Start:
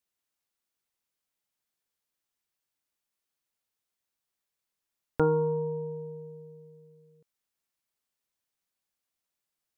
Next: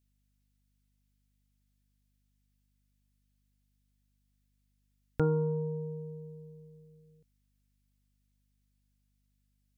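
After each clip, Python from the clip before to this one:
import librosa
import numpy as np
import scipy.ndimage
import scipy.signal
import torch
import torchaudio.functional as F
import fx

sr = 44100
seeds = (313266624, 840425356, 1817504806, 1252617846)

y = fx.graphic_eq_10(x, sr, hz=(125, 250, 500, 1000), db=(4, -4, -3, -10))
y = fx.add_hum(y, sr, base_hz=50, snr_db=34)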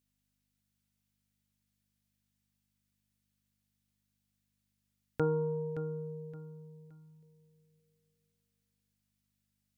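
y = fx.highpass(x, sr, hz=230.0, slope=6)
y = fx.echo_feedback(y, sr, ms=570, feedback_pct=29, wet_db=-12)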